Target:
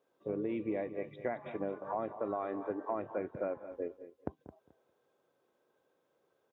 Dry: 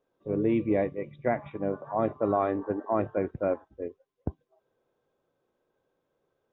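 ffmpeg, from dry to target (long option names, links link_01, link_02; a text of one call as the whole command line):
ffmpeg -i in.wav -filter_complex "[0:a]highpass=frequency=290:poles=1,asplit=2[link_01][link_02];[link_02]aecho=0:1:187:0.0841[link_03];[link_01][link_03]amix=inputs=2:normalize=0,acompressor=threshold=-35dB:ratio=6,asplit=2[link_04][link_05];[link_05]aecho=0:1:216|432:0.2|0.0399[link_06];[link_04][link_06]amix=inputs=2:normalize=0,volume=2dB" out.wav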